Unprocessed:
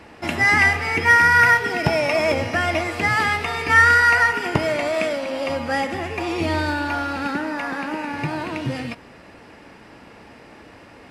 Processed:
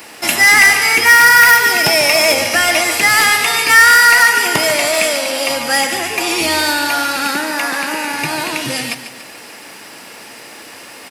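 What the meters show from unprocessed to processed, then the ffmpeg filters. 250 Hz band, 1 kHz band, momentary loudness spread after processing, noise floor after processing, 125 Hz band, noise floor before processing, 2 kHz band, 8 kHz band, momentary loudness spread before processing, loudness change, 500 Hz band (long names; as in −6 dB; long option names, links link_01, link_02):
+1.5 dB, +5.5 dB, 13 LU, −36 dBFS, −5.5 dB, −46 dBFS, +7.5 dB, +21.0 dB, 14 LU, +8.0 dB, +4.5 dB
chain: -af "highpass=93,highshelf=frequency=2800:gain=9.5,aecho=1:1:144|288|432|576|720:0.282|0.127|0.0571|0.0257|0.0116,areverse,acompressor=mode=upward:threshold=-38dB:ratio=2.5,areverse,aemphasis=mode=production:type=bsi,acontrast=75,volume=-1dB"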